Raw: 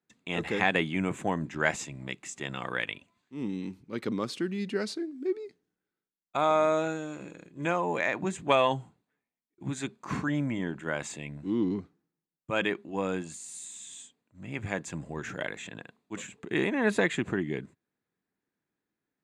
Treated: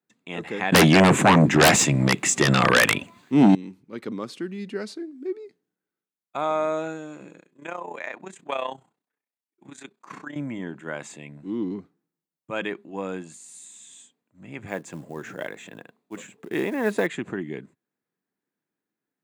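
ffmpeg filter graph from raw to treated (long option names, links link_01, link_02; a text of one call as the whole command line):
ffmpeg -i in.wav -filter_complex "[0:a]asettb=1/sr,asplit=3[link_01][link_02][link_03];[link_01]atrim=end=0.724[link_04];[link_02]atrim=start=0.72:end=3.55,asetpts=PTS-STARTPTS,afade=type=in:duration=0.004:curve=qsin,afade=type=out:start_time=2.826:duration=0.004:curve=qsin,lowshelf=frequency=92:gain=10,aeval=exprs='0.355*sin(PI/2*7.94*val(0)/0.355)':channel_layout=same[link_05];[link_03]atrim=start=3.546[link_06];[link_04][link_05]acrossfade=duration=0.004:curve1=hsin:curve2=qsin[link_07];[link_07][link_06]acrossfade=duration=0.004:curve1=qsin:curve2=hsin,asettb=1/sr,asplit=3[link_08][link_09][link_10];[link_08]atrim=end=7.404[link_11];[link_09]atrim=start=7.4:end=10.36,asetpts=PTS-STARTPTS,afade=type=in:duration=0.004:curve=qsin,afade=type=out:start_time=2.956:duration=0.004:curve=qsin,tremolo=f=31:d=0.75,highpass=frequency=510:poles=1[link_12];[link_10]atrim=start=10.356[link_13];[link_11][link_12]acrossfade=duration=0.004:curve1=hsin:curve2=qsin[link_14];[link_14][link_13]acrossfade=duration=0.004:curve1=qsin:curve2=hsin,asettb=1/sr,asplit=3[link_15][link_16][link_17];[link_15]atrim=end=14.684[link_18];[link_16]atrim=start=14.68:end=17.07,asetpts=PTS-STARTPTS,afade=type=in:duration=0.004:curve=qsin,afade=type=out:start_time=2.386:duration=0.004:curve=qsin,equalizer=frequency=490:width=0.77:gain=3.5,acrusher=bits=6:mode=log:mix=0:aa=0.000001[link_19];[link_17]atrim=start=17.066[link_20];[link_18][link_19]acrossfade=duration=0.004:curve1=hsin:curve2=qsin[link_21];[link_21][link_20]acrossfade=duration=0.004:curve1=qsin:curve2=hsin,highpass=140,equalizer=frequency=4600:width_type=o:width=2.4:gain=-3" out.wav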